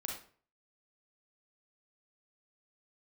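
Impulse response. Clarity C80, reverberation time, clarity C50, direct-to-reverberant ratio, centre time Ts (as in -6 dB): 9.0 dB, 0.45 s, 3.0 dB, -1.0 dB, 36 ms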